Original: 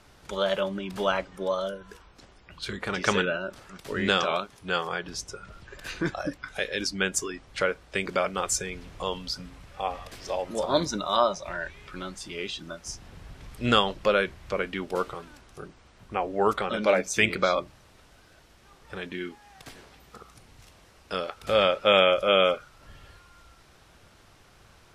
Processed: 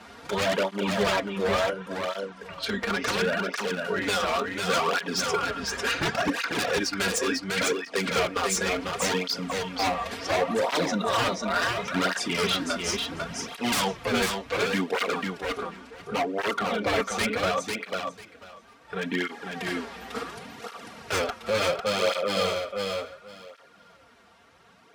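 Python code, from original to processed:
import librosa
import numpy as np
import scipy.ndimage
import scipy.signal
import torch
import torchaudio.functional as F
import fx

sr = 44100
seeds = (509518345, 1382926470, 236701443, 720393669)

p1 = scipy.signal.sosfilt(scipy.signal.butter(2, 120.0, 'highpass', fs=sr, output='sos'), x)
p2 = fx.high_shelf(p1, sr, hz=4000.0, db=-11.5)
p3 = p2 + 0.53 * np.pad(p2, (int(4.3 * sr / 1000.0), 0))[:len(p2)]
p4 = 10.0 ** (-22.5 / 20.0) * np.tanh(p3 / 10.0 ** (-22.5 / 20.0))
p5 = p3 + (p4 * 10.0 ** (-10.0 / 20.0))
p6 = fx.low_shelf(p5, sr, hz=460.0, db=-4.5)
p7 = fx.rider(p6, sr, range_db=10, speed_s=0.5)
p8 = 10.0 ** (-23.5 / 20.0) * (np.abs((p7 / 10.0 ** (-23.5 / 20.0) + 3.0) % 4.0 - 2.0) - 1.0)
p9 = p8 + fx.echo_feedback(p8, sr, ms=497, feedback_pct=17, wet_db=-4, dry=0)
p10 = fx.flanger_cancel(p9, sr, hz=0.7, depth_ms=7.5)
y = p10 * 10.0 ** (6.5 / 20.0)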